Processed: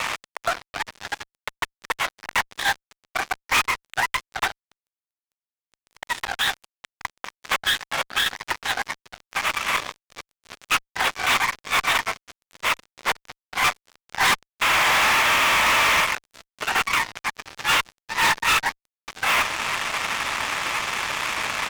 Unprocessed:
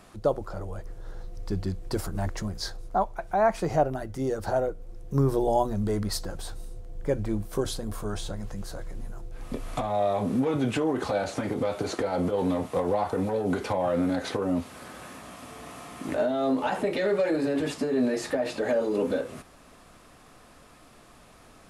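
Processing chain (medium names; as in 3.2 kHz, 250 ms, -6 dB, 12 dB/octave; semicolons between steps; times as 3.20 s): compressor with a negative ratio -38 dBFS, ratio -1; resampled via 8 kHz; ladder high-pass 1.8 kHz, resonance 50%; harmony voices -12 st -1 dB; fuzz box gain 54 dB, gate -59 dBFS; trim -3 dB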